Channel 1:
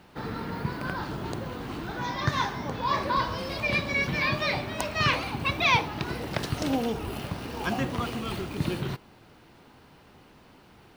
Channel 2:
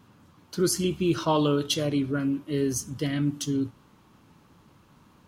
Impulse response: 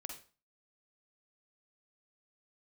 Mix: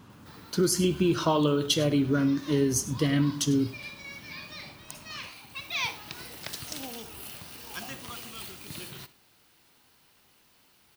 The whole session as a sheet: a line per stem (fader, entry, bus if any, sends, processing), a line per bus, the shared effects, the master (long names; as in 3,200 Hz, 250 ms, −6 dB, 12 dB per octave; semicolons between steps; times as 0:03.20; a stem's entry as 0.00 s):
+1.5 dB, 0.10 s, send −5.5 dB, no echo send, first-order pre-emphasis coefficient 0.9; automatic ducking −17 dB, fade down 0.80 s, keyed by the second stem
+3.0 dB, 0.00 s, send −9 dB, echo send −15.5 dB, downward compressor, threshold −25 dBFS, peak gain reduction 7 dB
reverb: on, RT60 0.35 s, pre-delay 43 ms
echo: single-tap delay 100 ms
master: no processing